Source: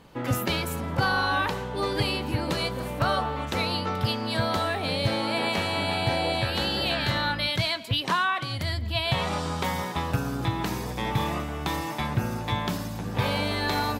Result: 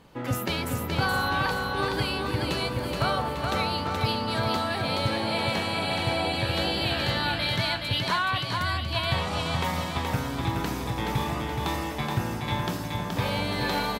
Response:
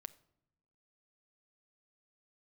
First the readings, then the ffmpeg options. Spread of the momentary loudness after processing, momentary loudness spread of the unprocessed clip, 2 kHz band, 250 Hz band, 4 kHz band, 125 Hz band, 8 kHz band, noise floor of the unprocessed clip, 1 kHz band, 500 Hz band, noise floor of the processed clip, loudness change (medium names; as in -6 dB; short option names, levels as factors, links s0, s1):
4 LU, 5 LU, 0.0 dB, -0.5 dB, -0.5 dB, -0.5 dB, 0.0 dB, -34 dBFS, 0.0 dB, -0.5 dB, -32 dBFS, -0.5 dB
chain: -af "aecho=1:1:424|848|1272|1696|2120|2544:0.631|0.303|0.145|0.0698|0.0335|0.0161,volume=0.794"